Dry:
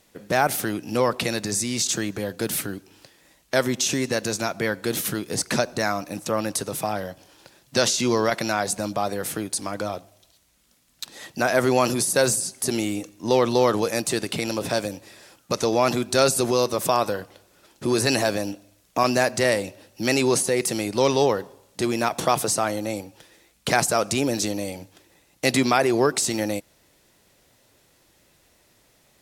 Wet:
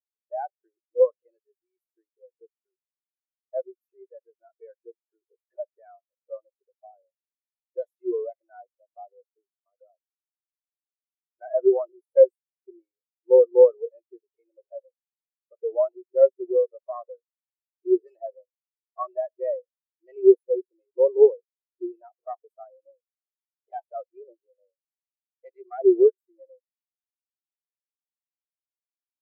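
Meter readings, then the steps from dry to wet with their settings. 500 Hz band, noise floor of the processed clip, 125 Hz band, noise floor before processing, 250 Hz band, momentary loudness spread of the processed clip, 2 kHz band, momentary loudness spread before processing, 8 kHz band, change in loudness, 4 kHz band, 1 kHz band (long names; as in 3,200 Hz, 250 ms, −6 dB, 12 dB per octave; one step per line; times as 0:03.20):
+1.5 dB, below −85 dBFS, below −40 dB, −61 dBFS, −8.0 dB, 22 LU, below −30 dB, 11 LU, below −40 dB, +1.5 dB, below −40 dB, −15.0 dB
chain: phase distortion by the signal itself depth 0.24 ms
linear-phase brick-wall high-pass 330 Hz
every bin expanded away from the loudest bin 4 to 1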